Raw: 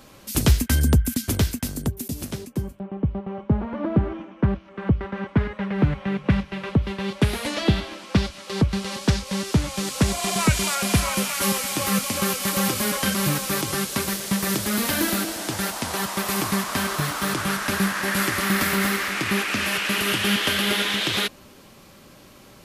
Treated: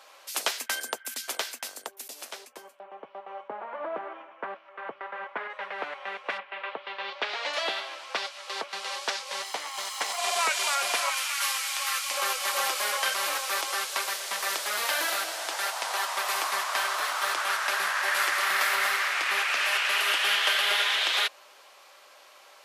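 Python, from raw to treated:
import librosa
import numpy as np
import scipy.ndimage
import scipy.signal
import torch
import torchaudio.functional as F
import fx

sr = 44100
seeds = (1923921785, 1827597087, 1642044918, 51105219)

y = fx.bass_treble(x, sr, bass_db=4, treble_db=-14, at=(3.48, 5.5))
y = fx.lowpass(y, sr, hz=fx.line((6.37, 2800.0), (7.52, 6200.0)), slope=24, at=(6.37, 7.52), fade=0.02)
y = fx.lower_of_two(y, sr, delay_ms=0.98, at=(9.42, 10.18))
y = fx.highpass(y, sr, hz=1200.0, slope=12, at=(11.1, 12.11))
y = scipy.signal.sosfilt(scipy.signal.butter(4, 610.0, 'highpass', fs=sr, output='sos'), y)
y = fx.high_shelf(y, sr, hz=8800.0, db=-10.5)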